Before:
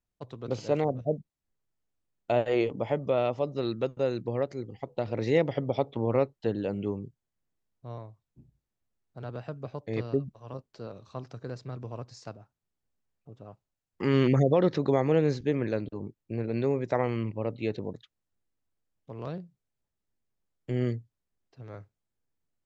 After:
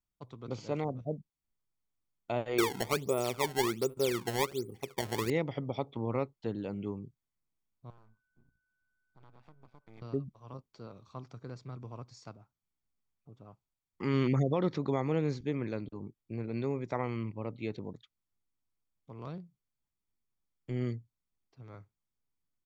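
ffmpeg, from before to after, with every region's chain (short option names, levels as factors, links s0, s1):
-filter_complex "[0:a]asettb=1/sr,asplit=3[s0][s1][s2];[s0]atrim=end=2.584[s3];[s1]atrim=start=2.58:end=5.3,asetpts=PTS-STARTPTS,afade=t=in:d=0.004:c=qsin,afade=t=out:st=2.716:d=0.004:c=qsin,equalizer=f=400:t=o:w=0.36:g=11.5,asplit=2[s4][s5];[s5]adelay=73,lowpass=f=4600:p=1,volume=0.075,asplit=2[s6][s7];[s7]adelay=73,lowpass=f=4600:p=1,volume=0.33[s8];[s4][s6][s8]amix=inputs=3:normalize=0,atrim=end_sample=119952,acrusher=samples=21:mix=1:aa=0.000001:lfo=1:lforange=33.6:lforate=1.3[s9];[s2]atrim=start=5.296[s10];[s3][s9]acrossfade=d=0.004:c1=hsin:c2=qsin[s11];[s11][s10]acrossfade=d=0.004:c1=qsin:c2=hsin,asettb=1/sr,asplit=3[s12][s13][s14];[s12]atrim=end=7.904[s15];[s13]atrim=start=7.9:end=10.02,asetpts=PTS-STARTPTS,afade=t=in:d=0.004:c=qsin,afade=t=out:st=2.116:d=0.004:c=qsin,acompressor=threshold=0.00178:ratio=2:attack=3.2:release=140:knee=1:detection=peak,aeval=exprs='max(val(0),0)':c=same,aeval=exprs='val(0)+0.0002*sin(2*PI*1500*n/s)':c=same[s16];[s14]atrim=start=10.016[s17];[s15][s16]acrossfade=d=0.004:c1=hsin:c2=qsin[s18];[s18][s17]acrossfade=d=0.004:c1=qsin:c2=hsin,equalizer=f=92:w=1.2:g=-2.5,aecho=1:1:0.9:0.36,volume=0.531"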